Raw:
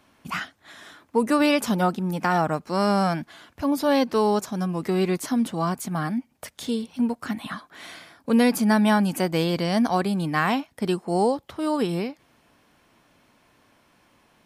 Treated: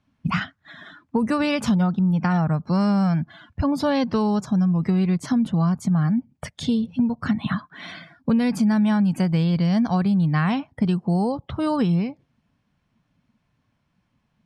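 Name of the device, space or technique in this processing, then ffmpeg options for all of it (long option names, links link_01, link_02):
jukebox: -af "afftdn=noise_reduction=20:noise_floor=-45,lowpass=6600,lowshelf=frequency=230:width_type=q:width=1.5:gain=11.5,acompressor=threshold=-24dB:ratio=5,volume=5.5dB"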